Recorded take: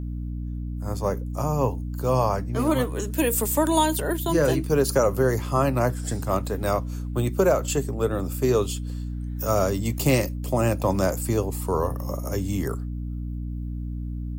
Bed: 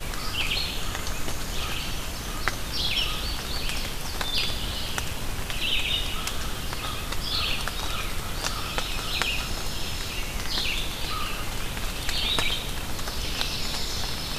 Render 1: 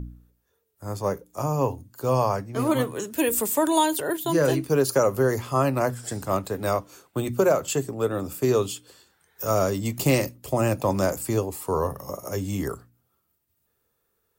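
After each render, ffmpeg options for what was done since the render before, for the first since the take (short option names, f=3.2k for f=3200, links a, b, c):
-af "bandreject=f=60:t=h:w=4,bandreject=f=120:t=h:w=4,bandreject=f=180:t=h:w=4,bandreject=f=240:t=h:w=4,bandreject=f=300:t=h:w=4"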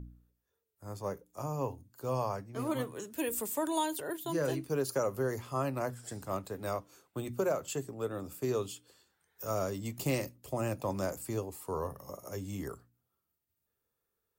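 -af "volume=-11dB"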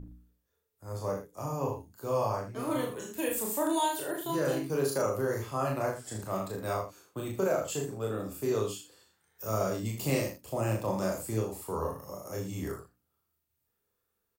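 -filter_complex "[0:a]asplit=2[a][b];[b]adelay=37,volume=-3dB[c];[a][c]amix=inputs=2:normalize=0,aecho=1:1:27|78:0.531|0.376"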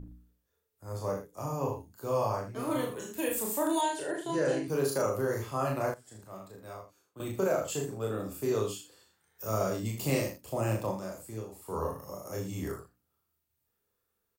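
-filter_complex "[0:a]asettb=1/sr,asplit=3[a][b][c];[a]atrim=end=3.814[d];[b]atrim=start=3.81:end=4.68,asetpts=PTS-STARTPTS,afade=t=in:d=0.004:c=qsin,afade=t=out:st=0.866:d=0.004:c=qsin,highpass=130,equalizer=f=470:t=q:w=4:g=3,equalizer=f=1.2k:t=q:w=4:g=-7,equalizer=f=1.8k:t=q:w=4:g=4,equalizer=f=3.6k:t=q:w=4:g=-4,lowpass=f=8.8k:w=0.5412,lowpass=f=8.8k:w=1.3066[e];[c]atrim=start=4.676[f];[d][e]acrossfade=d=0.004:c1=hsin:c2=qsin[g];[g][f]acrossfade=d=0.004:c1=qsin:c2=hsin,asplit=5[h][i][j][k][l];[h]atrim=end=5.942[m];[i]atrim=start=5.938:end=7.202,asetpts=PTS-STARTPTS,volume=-12dB[n];[j]atrim=start=7.198:end=11.01,asetpts=PTS-STARTPTS,afade=t=out:st=3.652:d=0.16:silence=0.375837[o];[k]atrim=start=11.01:end=11.62,asetpts=PTS-STARTPTS,volume=-8.5dB[p];[l]atrim=start=11.62,asetpts=PTS-STARTPTS,afade=t=in:d=0.16:silence=0.375837[q];[m][n]acrossfade=d=0.004:c1=hsin:c2=hsin[r];[o][p][q]concat=n=3:v=0:a=1[s];[r][s]acrossfade=d=0.004:c1=hsin:c2=hsin"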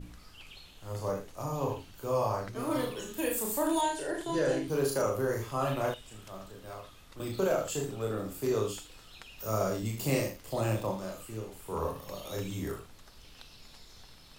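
-filter_complex "[1:a]volume=-24dB[a];[0:a][a]amix=inputs=2:normalize=0"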